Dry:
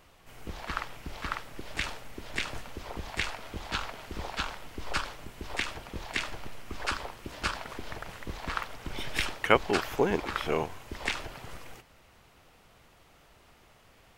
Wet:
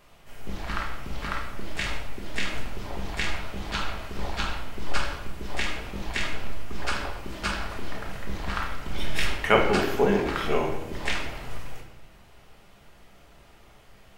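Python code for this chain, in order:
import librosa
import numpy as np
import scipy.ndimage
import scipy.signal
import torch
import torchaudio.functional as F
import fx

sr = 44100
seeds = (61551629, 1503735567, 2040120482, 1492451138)

y = fx.room_shoebox(x, sr, seeds[0], volume_m3=350.0, walls='mixed', distance_m=1.3)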